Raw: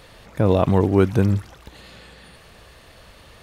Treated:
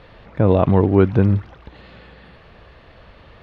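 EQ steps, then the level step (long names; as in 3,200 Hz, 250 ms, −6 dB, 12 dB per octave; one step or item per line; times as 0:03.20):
high-frequency loss of the air 310 metres
+3.0 dB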